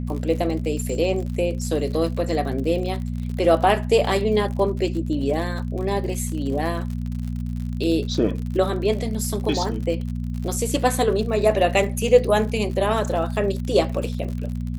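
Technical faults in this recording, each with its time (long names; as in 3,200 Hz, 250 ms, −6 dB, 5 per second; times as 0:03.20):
surface crackle 70 per second −30 dBFS
mains hum 60 Hz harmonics 4 −27 dBFS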